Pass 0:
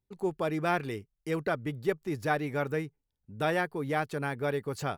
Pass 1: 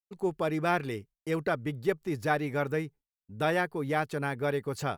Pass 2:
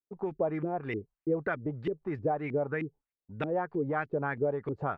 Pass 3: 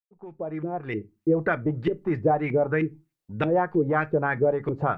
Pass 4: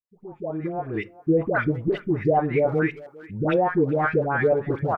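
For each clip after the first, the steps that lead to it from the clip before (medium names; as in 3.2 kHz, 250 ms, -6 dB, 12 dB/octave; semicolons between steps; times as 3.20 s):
expander -47 dBFS; trim +1 dB
compression, threshold -30 dBFS, peak gain reduction 9 dB; LFO low-pass saw up 3.2 Hz 280–2600 Hz
fade-in on the opening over 1.52 s; reverberation RT60 0.20 s, pre-delay 6 ms, DRR 12 dB; trim +7.5 dB
phase dispersion highs, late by 105 ms, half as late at 870 Hz; speakerphone echo 400 ms, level -19 dB; trim +2 dB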